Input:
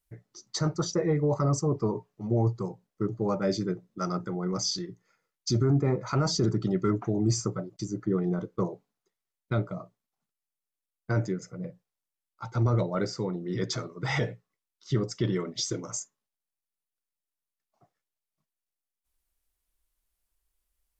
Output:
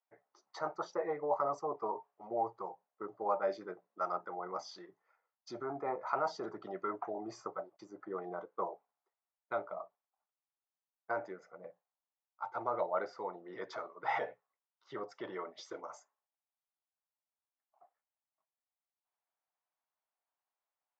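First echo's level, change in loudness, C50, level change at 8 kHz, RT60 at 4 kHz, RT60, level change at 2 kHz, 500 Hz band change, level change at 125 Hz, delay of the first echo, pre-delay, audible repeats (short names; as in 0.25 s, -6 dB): none, -10.0 dB, none, under -20 dB, none, none, -5.5 dB, -7.0 dB, -32.0 dB, none, none, none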